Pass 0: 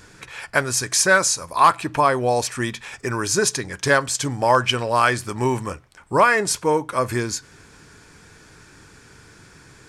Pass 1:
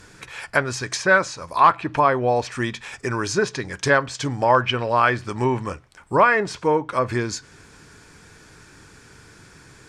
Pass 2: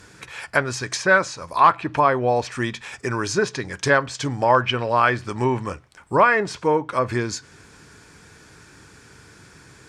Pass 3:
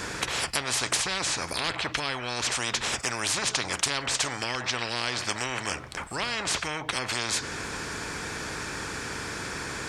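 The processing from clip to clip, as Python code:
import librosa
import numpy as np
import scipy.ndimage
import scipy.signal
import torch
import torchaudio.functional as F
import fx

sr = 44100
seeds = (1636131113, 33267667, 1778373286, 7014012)

y1 = fx.env_lowpass_down(x, sr, base_hz=2900.0, full_db=-16.5)
y2 = scipy.signal.sosfilt(scipy.signal.butter(2, 44.0, 'highpass', fs=sr, output='sos'), y1)
y3 = fx.high_shelf(y2, sr, hz=5300.0, db=-5.0)
y3 = fx.spectral_comp(y3, sr, ratio=10.0)
y3 = y3 * 10.0 ** (-6.0 / 20.0)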